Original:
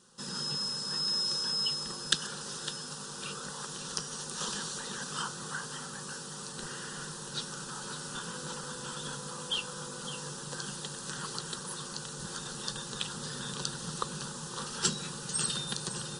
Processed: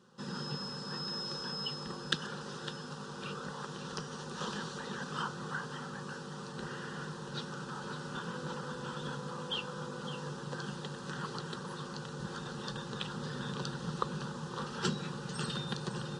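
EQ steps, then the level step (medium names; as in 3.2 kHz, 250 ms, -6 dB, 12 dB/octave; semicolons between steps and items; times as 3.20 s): high-pass 59 Hz; tape spacing loss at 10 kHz 25 dB; +3.5 dB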